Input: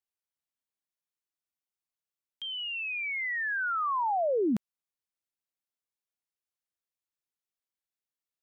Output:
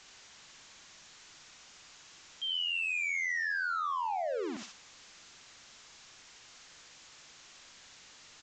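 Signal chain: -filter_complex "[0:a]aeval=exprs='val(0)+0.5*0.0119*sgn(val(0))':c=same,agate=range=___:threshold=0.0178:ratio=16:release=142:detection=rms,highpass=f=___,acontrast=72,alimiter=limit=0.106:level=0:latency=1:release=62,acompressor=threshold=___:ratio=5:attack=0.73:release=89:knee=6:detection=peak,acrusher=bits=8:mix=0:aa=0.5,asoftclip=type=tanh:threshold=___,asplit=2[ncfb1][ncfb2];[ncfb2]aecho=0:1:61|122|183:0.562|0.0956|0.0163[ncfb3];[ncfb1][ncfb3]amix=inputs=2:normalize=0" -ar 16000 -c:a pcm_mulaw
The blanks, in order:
0.251, 820, 0.0282, 0.0299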